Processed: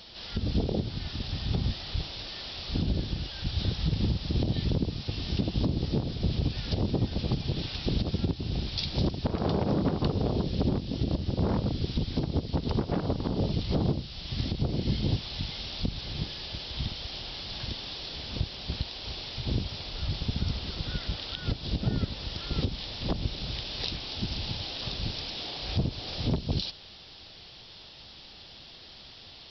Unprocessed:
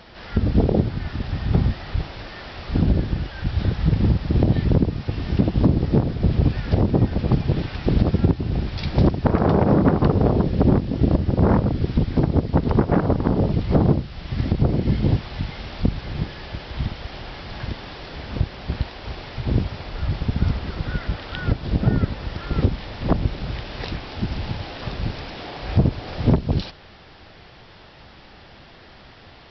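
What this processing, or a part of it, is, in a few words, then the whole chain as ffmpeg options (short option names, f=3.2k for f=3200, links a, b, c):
over-bright horn tweeter: -af "highshelf=f=2.6k:t=q:w=1.5:g=11.5,alimiter=limit=-9dB:level=0:latency=1:release=146,volume=-8dB"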